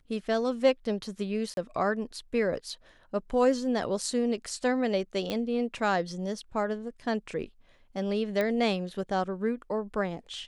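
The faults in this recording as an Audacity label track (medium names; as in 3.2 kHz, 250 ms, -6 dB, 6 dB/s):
1.540000	1.570000	dropout 32 ms
5.300000	5.300000	pop -18 dBFS
8.410000	8.410000	pop -17 dBFS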